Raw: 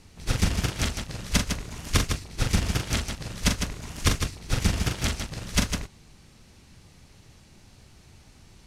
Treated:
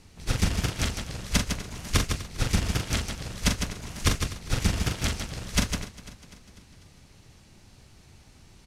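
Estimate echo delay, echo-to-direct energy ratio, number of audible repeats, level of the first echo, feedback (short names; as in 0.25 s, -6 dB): 0.248 s, -15.5 dB, 4, -17.0 dB, 57%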